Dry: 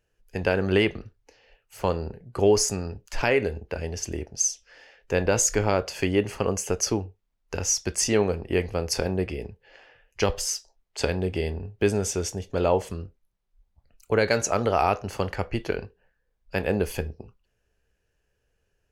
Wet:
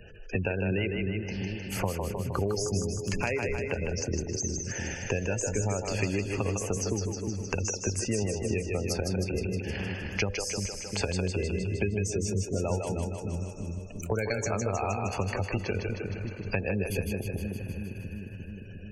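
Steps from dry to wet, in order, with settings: dynamic bell 3.1 kHz, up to -4 dB, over -52 dBFS, Q 7; compression 3:1, threshold -37 dBFS, peak gain reduction 16.5 dB; graphic EQ with 31 bands 100 Hz +8 dB, 200 Hz +5 dB, 2.5 kHz +5 dB; thinning echo 104 ms, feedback 85%, high-pass 210 Hz, level -22 dB; spectral gate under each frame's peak -20 dB strong; on a send: two-band feedback delay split 310 Hz, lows 353 ms, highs 155 ms, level -4.5 dB; on the sum: three bands compressed up and down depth 70%; trim +4.5 dB

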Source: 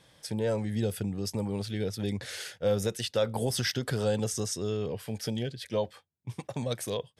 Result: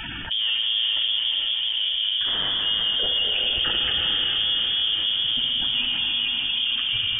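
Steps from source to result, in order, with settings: coarse spectral quantiser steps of 30 dB; high-pass 67 Hz 24 dB/octave; spectral gate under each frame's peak -15 dB strong; in parallel at -7.5 dB: wavefolder -34 dBFS; 1.11–1.77 s: on the sum: cascade formant filter a; on a send: echo that smears into a reverb 474 ms, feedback 54%, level -5 dB; on the sum: gated-style reverb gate 500 ms flat, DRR -1 dB; frequency inversion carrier 3.4 kHz; level flattener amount 70%

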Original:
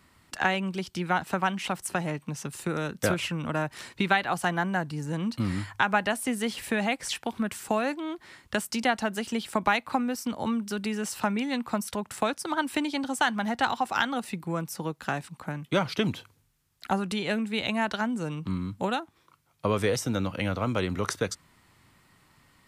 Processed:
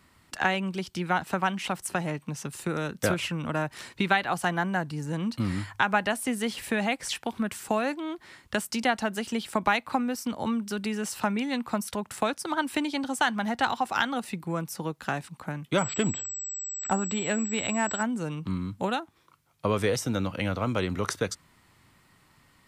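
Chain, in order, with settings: 15.78–18.03 s: class-D stage that switches slowly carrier 7.8 kHz

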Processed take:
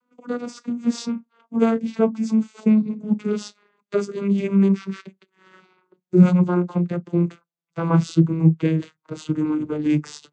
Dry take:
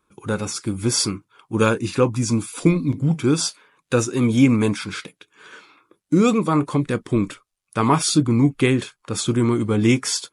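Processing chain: vocoder on a note that slides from B3, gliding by -9 st

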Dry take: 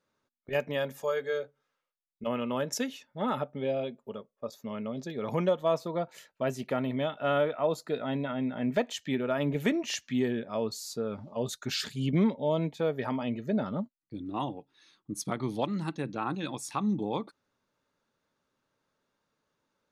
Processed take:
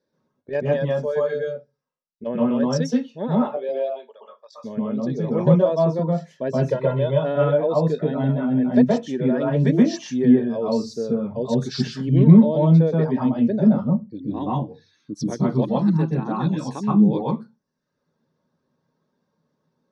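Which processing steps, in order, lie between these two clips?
low-pass 5.7 kHz 12 dB/octave; reverb removal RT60 0.8 s; 3.27–4.53 s: high-pass 300 Hz -> 970 Hz 24 dB/octave; 6.51–7.10 s: comb 2 ms, depth 87%; 8.89–9.53 s: transient shaper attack -4 dB, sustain +3 dB; reverberation RT60 0.20 s, pre-delay 121 ms, DRR -3.5 dB; trim -7 dB

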